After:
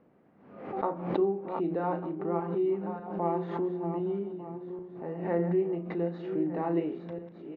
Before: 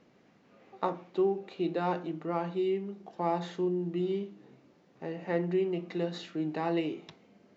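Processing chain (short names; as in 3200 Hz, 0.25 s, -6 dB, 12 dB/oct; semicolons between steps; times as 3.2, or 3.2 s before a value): regenerating reverse delay 0.599 s, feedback 44%, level -8.5 dB; LPF 1300 Hz 12 dB/oct; notches 60/120/180 Hz; doubler 35 ms -9.5 dB; backwards sustainer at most 70 dB/s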